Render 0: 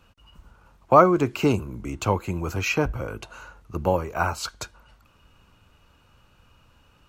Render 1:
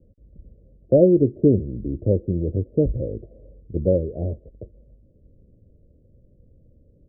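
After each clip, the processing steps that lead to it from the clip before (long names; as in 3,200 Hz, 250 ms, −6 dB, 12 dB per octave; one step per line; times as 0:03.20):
Butterworth low-pass 580 Hz 72 dB per octave
level +5 dB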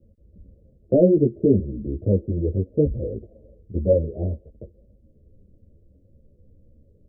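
string-ensemble chorus
level +2.5 dB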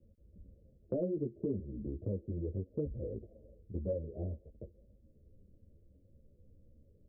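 downward compressor 2.5 to 1, threshold −29 dBFS, peak gain reduction 12.5 dB
level −8 dB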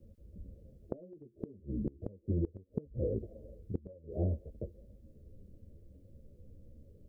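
gate with flip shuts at −29 dBFS, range −25 dB
level +7 dB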